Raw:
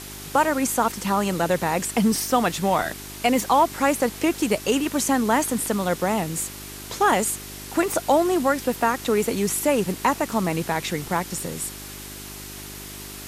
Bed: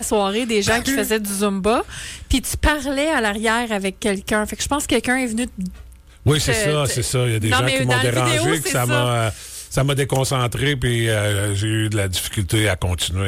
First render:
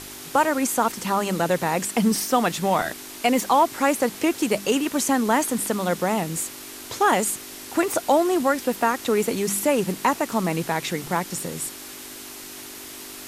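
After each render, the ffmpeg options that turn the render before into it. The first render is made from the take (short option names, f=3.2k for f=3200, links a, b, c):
-af "bandreject=f=50:t=h:w=4,bandreject=f=100:t=h:w=4,bandreject=f=150:t=h:w=4,bandreject=f=200:t=h:w=4"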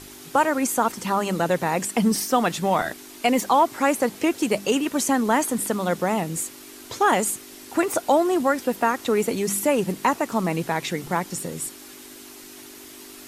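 -af "afftdn=nr=6:nf=-39"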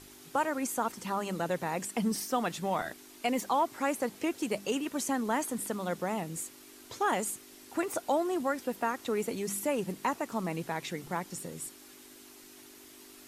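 -af "volume=-10dB"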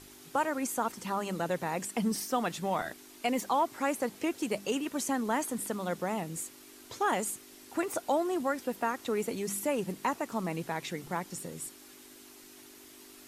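-af anull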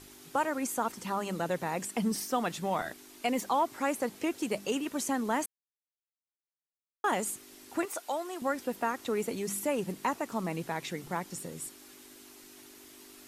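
-filter_complex "[0:a]asettb=1/sr,asplit=3[a][b][c];[a]atrim=end=7.854[d];[b]atrim=start=7.85:end=8.42,asetpts=PTS-STARTPTS,afade=t=in:d=0.004:c=qsin,afade=t=out:st=0.566:d=0.004:c=qsin,highpass=f=1k:p=1[e];[c]atrim=start=8.416[f];[d][e]acrossfade=d=0.004:c1=hsin:c2=qsin[g];[g][f]acrossfade=d=0.004:c1=qsin:c2=hsin,asplit=3[h][i][j];[h]atrim=end=5.46,asetpts=PTS-STARTPTS,afade=t=out:st=5.456:d=0.004:c=hsin[k];[i]atrim=start=5.46:end=7.04,asetpts=PTS-STARTPTS,volume=0[l];[j]atrim=start=7.04,asetpts=PTS-STARTPTS,afade=t=in:d=0.004:c=hsin[m];[k][l][m]concat=n=3:v=0:a=1"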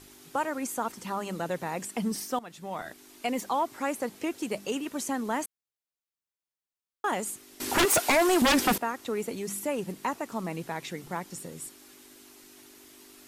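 -filter_complex "[0:a]asettb=1/sr,asplit=3[a][b][c];[a]atrim=end=7.604[d];[b]atrim=start=7.6:end=8.78,asetpts=PTS-STARTPTS,afade=t=in:d=0.004:c=qsin,afade=t=out:st=1.176:d=0.004:c=qsin,aeval=exprs='0.126*sin(PI/2*5.62*val(0)/0.126)':c=same[e];[c]atrim=start=8.776[f];[d][e]acrossfade=d=0.004:c1=hsin:c2=qsin[g];[g][f]acrossfade=d=0.004:c1=qsin:c2=hsin,asplit=2[h][i];[h]atrim=end=2.39,asetpts=PTS-STARTPTS,afade=t=out:st=2.386:d=0.004:c=hsin:silence=0.158489[j];[i]atrim=start=2.39,asetpts=PTS-STARTPTS,afade=t=in:d=0.71:silence=0.158489[k];[j][k]concat=n=2:v=0:a=1"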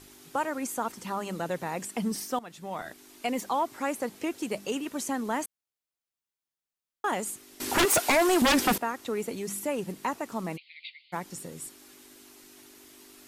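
-filter_complex "[0:a]asplit=3[a][b][c];[a]afade=t=out:st=10.56:d=0.02[d];[b]asuperpass=centerf=3100:order=20:qfactor=1.2,afade=t=in:st=10.56:d=0.02,afade=t=out:st=11.12:d=0.02[e];[c]afade=t=in:st=11.12:d=0.02[f];[d][e][f]amix=inputs=3:normalize=0"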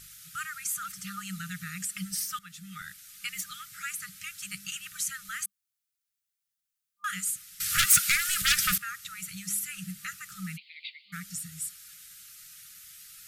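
-af "afftfilt=real='re*(1-between(b*sr/4096,200,1200))':imag='im*(1-between(b*sr/4096,200,1200))':win_size=4096:overlap=0.75,highshelf=f=5.4k:g=7.5"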